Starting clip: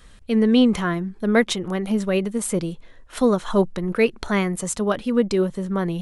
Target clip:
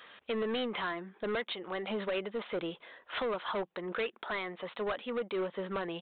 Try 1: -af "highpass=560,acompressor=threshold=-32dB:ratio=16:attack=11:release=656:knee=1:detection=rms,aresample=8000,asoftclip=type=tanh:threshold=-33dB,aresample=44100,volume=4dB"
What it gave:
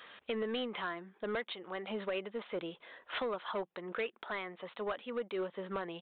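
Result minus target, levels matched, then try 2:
compressor: peak gain reduction +5.5 dB
-af "highpass=560,acompressor=threshold=-26dB:ratio=16:attack=11:release=656:knee=1:detection=rms,aresample=8000,asoftclip=type=tanh:threshold=-33dB,aresample=44100,volume=4dB"

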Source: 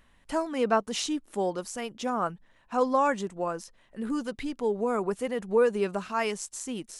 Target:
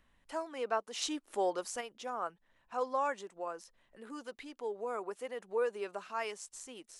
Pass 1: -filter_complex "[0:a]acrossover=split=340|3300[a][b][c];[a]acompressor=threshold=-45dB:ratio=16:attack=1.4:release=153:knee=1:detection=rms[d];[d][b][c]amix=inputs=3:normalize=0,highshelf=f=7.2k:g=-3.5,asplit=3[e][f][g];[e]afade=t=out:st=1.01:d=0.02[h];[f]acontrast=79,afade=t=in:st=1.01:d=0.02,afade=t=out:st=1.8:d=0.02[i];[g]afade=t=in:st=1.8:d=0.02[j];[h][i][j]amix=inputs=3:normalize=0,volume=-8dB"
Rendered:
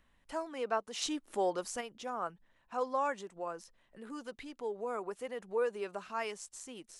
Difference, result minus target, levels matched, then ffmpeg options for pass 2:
compressor: peak gain reduction -10.5 dB
-filter_complex "[0:a]acrossover=split=340|3300[a][b][c];[a]acompressor=threshold=-56dB:ratio=16:attack=1.4:release=153:knee=1:detection=rms[d];[d][b][c]amix=inputs=3:normalize=0,highshelf=f=7.2k:g=-3.5,asplit=3[e][f][g];[e]afade=t=out:st=1.01:d=0.02[h];[f]acontrast=79,afade=t=in:st=1.01:d=0.02,afade=t=out:st=1.8:d=0.02[i];[g]afade=t=in:st=1.8:d=0.02[j];[h][i][j]amix=inputs=3:normalize=0,volume=-8dB"

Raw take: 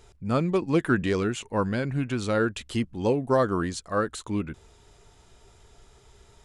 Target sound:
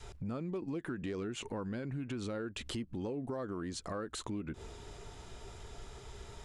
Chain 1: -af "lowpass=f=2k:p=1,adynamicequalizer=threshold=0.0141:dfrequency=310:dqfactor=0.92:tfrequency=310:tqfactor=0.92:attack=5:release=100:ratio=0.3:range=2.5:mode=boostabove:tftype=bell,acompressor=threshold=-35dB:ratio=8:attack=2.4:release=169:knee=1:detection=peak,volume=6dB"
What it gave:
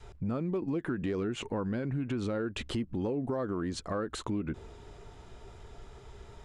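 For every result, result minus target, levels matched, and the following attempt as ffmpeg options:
8000 Hz band -7.5 dB; compressor: peak gain reduction -6.5 dB
-af "lowpass=f=6.8k:p=1,adynamicequalizer=threshold=0.0141:dfrequency=310:dqfactor=0.92:tfrequency=310:tqfactor=0.92:attack=5:release=100:ratio=0.3:range=2.5:mode=boostabove:tftype=bell,acompressor=threshold=-35dB:ratio=8:attack=2.4:release=169:knee=1:detection=peak,volume=6dB"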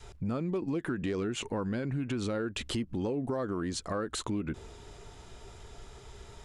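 compressor: peak gain reduction -6 dB
-af "lowpass=f=6.8k:p=1,adynamicequalizer=threshold=0.0141:dfrequency=310:dqfactor=0.92:tfrequency=310:tqfactor=0.92:attack=5:release=100:ratio=0.3:range=2.5:mode=boostabove:tftype=bell,acompressor=threshold=-42dB:ratio=8:attack=2.4:release=169:knee=1:detection=peak,volume=6dB"

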